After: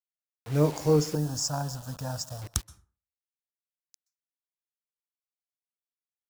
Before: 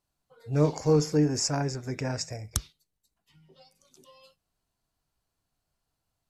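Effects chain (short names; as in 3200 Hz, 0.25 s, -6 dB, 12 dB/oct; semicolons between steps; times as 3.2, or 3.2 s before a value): bit-crush 7-bit; 1.15–2.42 fixed phaser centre 900 Hz, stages 4; reverb RT60 0.40 s, pre-delay 0.117 s, DRR 21 dB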